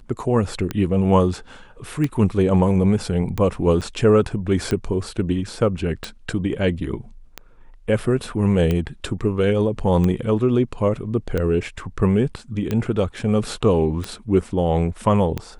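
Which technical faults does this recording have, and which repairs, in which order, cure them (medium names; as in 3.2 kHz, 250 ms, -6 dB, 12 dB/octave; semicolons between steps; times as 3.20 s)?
tick 45 rpm -11 dBFS
3.81–3.82 s: dropout 6.7 ms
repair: de-click; interpolate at 3.81 s, 6.7 ms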